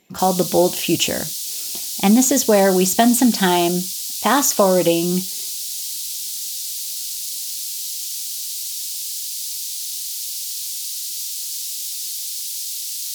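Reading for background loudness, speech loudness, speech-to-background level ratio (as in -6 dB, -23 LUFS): -24.0 LUFS, -17.5 LUFS, 6.5 dB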